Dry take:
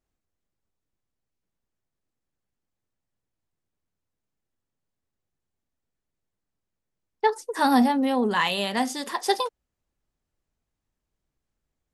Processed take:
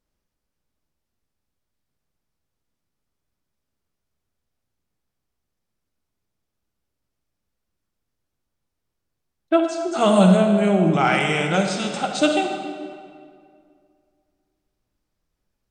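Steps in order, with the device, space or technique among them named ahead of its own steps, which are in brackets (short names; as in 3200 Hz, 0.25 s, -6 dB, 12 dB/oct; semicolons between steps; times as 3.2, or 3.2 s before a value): slowed and reverbed (varispeed -24%; reverb RT60 2.2 s, pre-delay 41 ms, DRR 3.5 dB); gain +3.5 dB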